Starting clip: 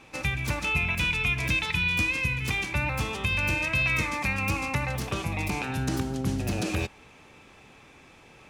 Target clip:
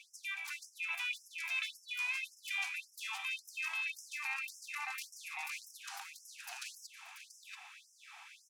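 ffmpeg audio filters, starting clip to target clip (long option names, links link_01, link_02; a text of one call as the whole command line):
ffmpeg -i in.wav -af "areverse,acompressor=threshold=-34dB:ratio=20,areverse,aecho=1:1:580|685:0.119|0.355,afftfilt=real='re*gte(b*sr/1024,650*pow(5200/650,0.5+0.5*sin(2*PI*1.8*pts/sr)))':imag='im*gte(b*sr/1024,650*pow(5200/650,0.5+0.5*sin(2*PI*1.8*pts/sr)))':win_size=1024:overlap=0.75,volume=1dB" out.wav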